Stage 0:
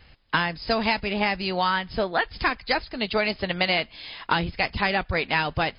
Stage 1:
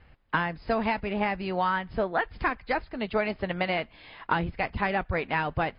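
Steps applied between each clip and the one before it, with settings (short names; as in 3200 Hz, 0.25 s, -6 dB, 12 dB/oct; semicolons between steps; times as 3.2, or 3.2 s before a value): LPF 1900 Hz 12 dB/oct; gain -2 dB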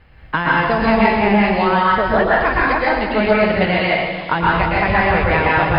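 plate-style reverb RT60 1.3 s, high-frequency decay 0.95×, pre-delay 0.105 s, DRR -6 dB; gain +6.5 dB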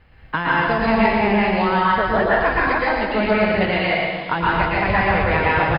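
echo 0.115 s -6 dB; gain -3.5 dB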